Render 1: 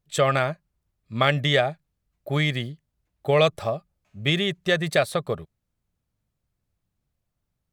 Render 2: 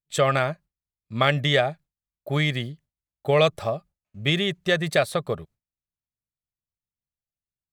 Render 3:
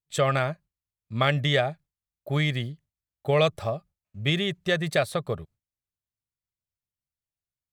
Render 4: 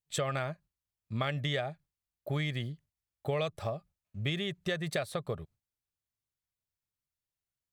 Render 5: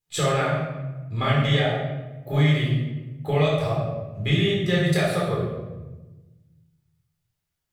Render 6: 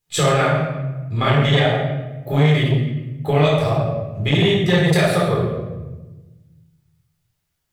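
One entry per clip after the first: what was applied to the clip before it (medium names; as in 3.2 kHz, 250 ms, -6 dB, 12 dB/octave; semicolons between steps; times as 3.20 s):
gate with hold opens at -47 dBFS
peaking EQ 94 Hz +5.5 dB 1.1 oct; trim -3 dB
compression 3:1, threshold -31 dBFS, peak gain reduction 11 dB; trim -1 dB
simulated room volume 650 m³, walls mixed, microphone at 4 m; trim +1.5 dB
transformer saturation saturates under 410 Hz; trim +7 dB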